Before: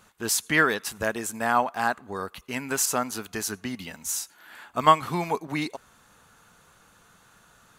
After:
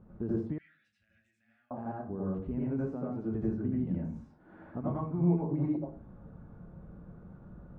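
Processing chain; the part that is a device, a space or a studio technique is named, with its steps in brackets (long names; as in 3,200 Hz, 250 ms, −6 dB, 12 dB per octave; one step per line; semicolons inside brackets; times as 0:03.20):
television next door (downward compressor 3 to 1, threshold −40 dBFS, peak gain reduction 21 dB; low-pass filter 300 Hz 12 dB per octave; convolution reverb RT60 0.45 s, pre-delay 78 ms, DRR −6 dB)
0:00.58–0:01.71: inverse Chebyshev high-pass filter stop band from 1,100 Hz, stop band 40 dB
level +8.5 dB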